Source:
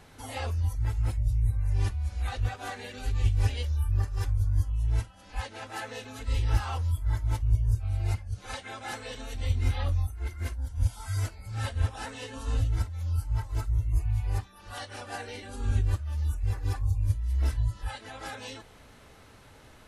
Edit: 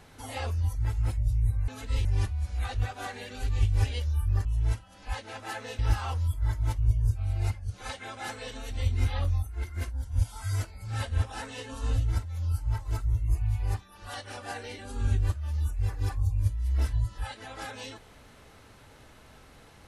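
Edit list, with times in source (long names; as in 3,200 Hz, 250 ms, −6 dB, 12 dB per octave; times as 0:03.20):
0:04.08–0:04.72: remove
0:06.06–0:06.43: move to 0:01.68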